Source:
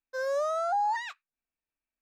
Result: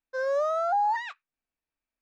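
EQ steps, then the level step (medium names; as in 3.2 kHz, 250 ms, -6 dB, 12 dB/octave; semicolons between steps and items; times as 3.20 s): Bessel low-pass 7.9 kHz; treble shelf 4.7 kHz -10 dB; +3.0 dB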